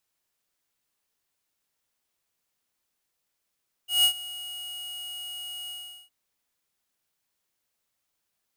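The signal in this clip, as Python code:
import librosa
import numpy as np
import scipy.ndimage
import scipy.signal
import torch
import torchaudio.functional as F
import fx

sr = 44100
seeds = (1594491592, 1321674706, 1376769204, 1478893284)

y = fx.adsr_tone(sr, wave='square', hz=2890.0, attack_ms=162.0, decay_ms=85.0, sustain_db=-19.0, held_s=1.81, release_ms=404.0, level_db=-18.5)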